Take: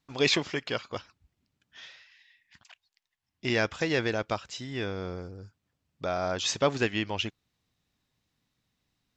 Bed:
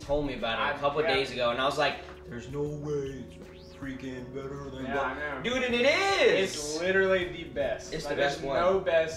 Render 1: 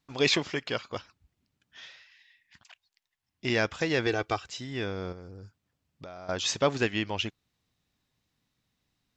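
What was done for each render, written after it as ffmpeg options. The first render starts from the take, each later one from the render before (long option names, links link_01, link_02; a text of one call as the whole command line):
ffmpeg -i in.wav -filter_complex "[0:a]asettb=1/sr,asplit=3[link_01][link_02][link_03];[link_01]atrim=end=4.064[link_04];[link_02]atrim=start=4.06:end=4.47,asetpts=PTS-STARTPTS,afade=type=in:duration=0.004:curve=qsin,afade=type=out:start_time=0.406:duration=0.004:curve=qsin,aecho=1:1:2.6:0.65,atrim=end_sample=18081[link_05];[link_03]atrim=start=4.466[link_06];[link_04][link_05]acrossfade=duration=0.004:curve1=hsin:curve2=qsin[link_07];[link_07][link_06]acrossfade=duration=0.004:curve1=qsin:curve2=hsin,asettb=1/sr,asplit=3[link_08][link_09][link_10];[link_08]atrim=end=5.124[link_11];[link_09]atrim=start=5.12:end=6.29,asetpts=PTS-STARTPTS,afade=type=in:duration=0.004:curve=qsin,afade=type=out:start_time=1.166:duration=0.004:curve=qsin,acompressor=threshold=-41dB:ratio=5:attack=3.2:release=140:knee=1:detection=peak[link_12];[link_10]atrim=start=6.286[link_13];[link_11][link_12]acrossfade=duration=0.004:curve1=hsin:curve2=qsin[link_14];[link_14][link_13]acrossfade=duration=0.004:curve1=qsin:curve2=hsin" out.wav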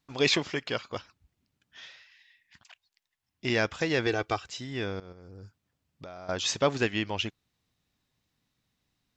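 ffmpeg -i in.wav -filter_complex "[0:a]asplit=2[link_01][link_02];[link_01]atrim=end=5,asetpts=PTS-STARTPTS,afade=type=out:start_time=4.996:duration=0.004:curve=hsin:silence=0.141254[link_03];[link_02]atrim=start=5,asetpts=PTS-STARTPTS,afade=type=in:duration=0.44:silence=0.141254[link_04];[link_03][link_04]concat=n=2:v=0:a=1" out.wav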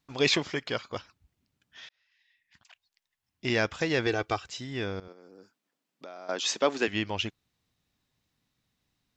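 ffmpeg -i in.wav -filter_complex "[0:a]asettb=1/sr,asplit=3[link_01][link_02][link_03];[link_01]atrim=end=0.454[link_04];[link_02]atrim=start=0.45:end=0.96,asetpts=PTS-STARTPTS,afade=type=in:duration=0.004:curve=qsin,afade=type=out:start_time=0.506:duration=0.004:curve=qsin,bandreject=frequency=2700:width=12[link_05];[link_03]atrim=start=0.956[link_06];[link_04][link_05]acrossfade=duration=0.004:curve1=hsin:curve2=qsin[link_07];[link_07][link_06]acrossfade=duration=0.004:curve1=qsin:curve2=hsin,asettb=1/sr,asplit=3[link_08][link_09][link_10];[link_08]atrim=end=5.084[link_11];[link_09]atrim=start=5.08:end=6.88,asetpts=PTS-STARTPTS,afade=type=in:duration=0.004:curve=qsin,afade=type=out:start_time=1.796:duration=0.004:curve=qsin,highpass=frequency=230:width=0.5412,highpass=frequency=230:width=1.3066[link_12];[link_10]atrim=start=6.876[link_13];[link_11][link_12]acrossfade=duration=0.004:curve1=hsin:curve2=qsin[link_14];[link_14][link_13]acrossfade=duration=0.004:curve1=qsin:curve2=hsin,asplit=2[link_15][link_16];[link_15]atrim=end=1.89,asetpts=PTS-STARTPTS,afade=type=out:start_time=1.886:duration=0.004:curve=hsin[link_17];[link_16]atrim=start=1.89,asetpts=PTS-STARTPTS,afade=type=in:duration=1.59:curve=qsin[link_18];[link_17][link_18]concat=n=2:v=0:a=1" out.wav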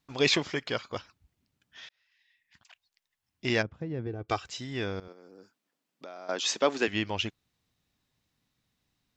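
ffmpeg -i in.wav -filter_complex "[0:a]asplit=3[link_01][link_02][link_03];[link_01]afade=type=out:start_time=3.61:duration=0.02[link_04];[link_02]bandpass=frequency=130:width_type=q:width=0.92,afade=type=in:start_time=3.61:duration=0.02,afade=type=out:start_time=4.28:duration=0.02[link_05];[link_03]afade=type=in:start_time=4.28:duration=0.02[link_06];[link_04][link_05][link_06]amix=inputs=3:normalize=0" out.wav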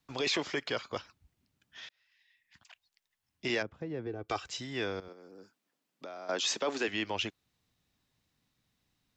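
ffmpeg -i in.wav -filter_complex "[0:a]acrossover=split=270|380|1700[link_01][link_02][link_03][link_04];[link_01]acompressor=threshold=-45dB:ratio=6[link_05];[link_05][link_02][link_03][link_04]amix=inputs=4:normalize=0,alimiter=limit=-22dB:level=0:latency=1:release=10" out.wav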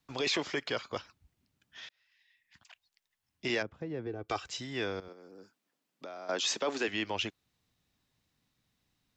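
ffmpeg -i in.wav -af anull out.wav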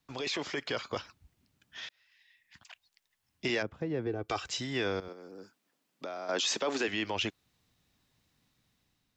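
ffmpeg -i in.wav -af "alimiter=level_in=2.5dB:limit=-24dB:level=0:latency=1:release=27,volume=-2.5dB,dynaudnorm=framelen=250:gausssize=5:maxgain=4.5dB" out.wav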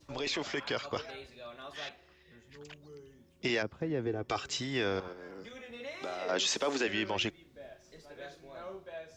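ffmpeg -i in.wav -i bed.wav -filter_complex "[1:a]volume=-19.5dB[link_01];[0:a][link_01]amix=inputs=2:normalize=0" out.wav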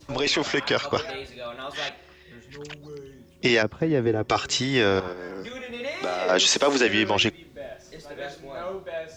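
ffmpeg -i in.wav -af "volume=11dB" out.wav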